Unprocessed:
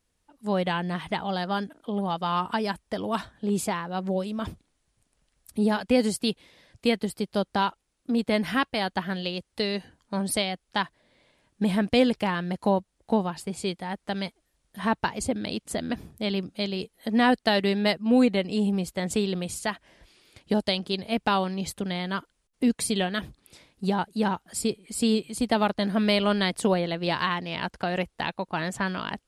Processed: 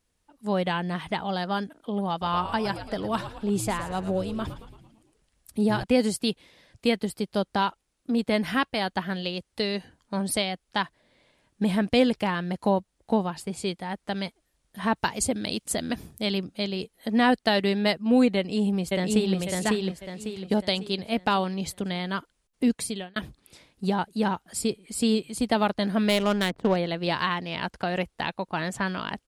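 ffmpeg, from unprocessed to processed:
-filter_complex "[0:a]asettb=1/sr,asplit=3[s0][s1][s2];[s0]atrim=end=2.104[s3];[s1]atrim=start=2.1:end=5.84,asetpts=PTS-STARTPTS,afade=t=in:d=0.004:c=qsin,afade=t=out:st=3.736:d=0.004:c=qsin,asplit=7[s4][s5][s6][s7][s8][s9][s10];[s5]adelay=112,afreqshift=-88,volume=0.282[s11];[s6]adelay=224,afreqshift=-176,volume=0.155[s12];[s7]adelay=336,afreqshift=-264,volume=0.0851[s13];[s8]adelay=448,afreqshift=-352,volume=0.0468[s14];[s9]adelay=560,afreqshift=-440,volume=0.0257[s15];[s10]adelay=672,afreqshift=-528,volume=0.0141[s16];[s4][s11][s12][s13][s14][s15][s16]amix=inputs=7:normalize=0,atrim=end_sample=164934[s17];[s2]atrim=start=5.836[s18];[s3][s17]acrossfade=d=0.004:c1=hsin:c2=qsin[s19];[s19][s18]acrossfade=d=0.004:c1=qsin:c2=hsin,asettb=1/sr,asplit=3[s20][s21][s22];[s20]atrim=end=14.964[s23];[s21]atrim=start=14.96:end=16.38,asetpts=PTS-STARTPTS,afade=t=in:d=0.004:c=qsin,afade=t=out:st=1.416:d=0.004:c=qsin,highshelf=f=4400:g=9[s24];[s22]atrim=start=16.376[s25];[s23][s24]acrossfade=d=0.004:c1=hsin:c2=qsin[s26];[s26][s25]acrossfade=d=0.004:c1=qsin:c2=hsin,asplit=2[s27][s28];[s28]afade=t=in:st=18.36:d=0.01,afade=t=out:st=19.36:d=0.01,aecho=0:1:550|1100|1650|2200|2750:0.841395|0.336558|0.134623|0.0538493|0.0215397[s29];[s27][s29]amix=inputs=2:normalize=0,asettb=1/sr,asplit=3[s30][s31][s32];[s30]atrim=end=26.094[s33];[s31]atrim=start=26.09:end=26.76,asetpts=PTS-STARTPTS,afade=t=in:d=0.004:c=qsin,afade=t=out:st=0.666:d=0.004:c=qsin,adynamicsmooth=sensitivity=2.5:basefreq=780[s34];[s32]atrim=start=26.756[s35];[s33][s34]acrossfade=d=0.004:c1=hsin:c2=qsin[s36];[s36][s35]acrossfade=d=0.004:c1=qsin:c2=hsin,asplit=2[s37][s38];[s37]atrim=end=23.16,asetpts=PTS-STARTPTS,afade=t=out:st=22.7:d=0.46[s39];[s38]atrim=start=23.16,asetpts=PTS-STARTPTS,afade=t=in:d=0.004:c=hsin[s40];[s39][s40]concat=n=2:v=0:a=1"

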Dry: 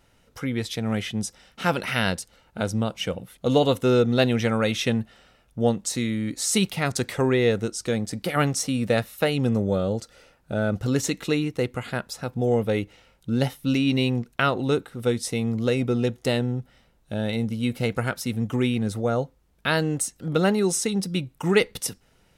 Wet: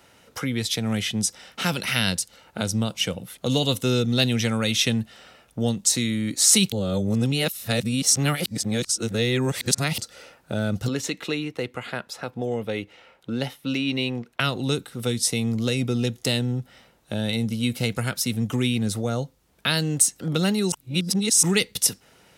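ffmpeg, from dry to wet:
-filter_complex "[0:a]asettb=1/sr,asplit=3[s0][s1][s2];[s0]atrim=end=10.884[s3];[s1]atrim=start=10.88:end=14.4,asetpts=PTS-STARTPTS,afade=t=in:d=0.004:c=qsin,afade=t=out:st=3.516:d=0.004:c=qsin,bass=f=250:g=-9,treble=f=4000:g=-13[s4];[s2]atrim=start=14.396[s5];[s3][s4]acrossfade=d=0.004:c1=hsin:c2=qsin[s6];[s6][s5]acrossfade=d=0.004:c1=qsin:c2=hsin,asplit=5[s7][s8][s9][s10][s11];[s7]atrim=end=6.722[s12];[s8]atrim=start=6.718:end=9.982,asetpts=PTS-STARTPTS,areverse[s13];[s9]atrim=start=9.978:end=20.722[s14];[s10]atrim=start=20.718:end=21.432,asetpts=PTS-STARTPTS,areverse[s15];[s11]atrim=start=21.428[s16];[s12][s13]acrossfade=d=0.004:c1=hsin:c2=hsin[s17];[s17][s14]acrossfade=d=0.004:c1=hsin:c2=hsin[s18];[s18][s15]acrossfade=d=0.004:c1=hsin:c2=hsin[s19];[s19][s16]acrossfade=d=0.004:c1=hsin:c2=hsin,acrossover=split=210|3000[s20][s21][s22];[s21]acompressor=threshold=0.00794:ratio=2.5[s23];[s20][s23][s22]amix=inputs=3:normalize=0,highpass=59,lowshelf=f=180:g=-10,volume=2.82"

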